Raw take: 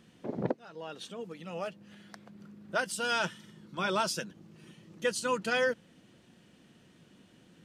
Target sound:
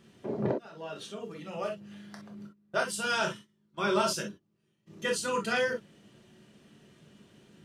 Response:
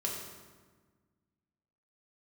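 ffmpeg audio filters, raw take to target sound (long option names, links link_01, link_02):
-filter_complex "[0:a]asplit=3[link_01][link_02][link_03];[link_01]afade=type=out:start_time=2.46:duration=0.02[link_04];[link_02]agate=range=-23dB:threshold=-43dB:ratio=16:detection=peak,afade=type=in:start_time=2.46:duration=0.02,afade=type=out:start_time=4.86:duration=0.02[link_05];[link_03]afade=type=in:start_time=4.86:duration=0.02[link_06];[link_04][link_05][link_06]amix=inputs=3:normalize=0[link_07];[1:a]atrim=start_sample=2205,atrim=end_sample=3087[link_08];[link_07][link_08]afir=irnorm=-1:irlink=0"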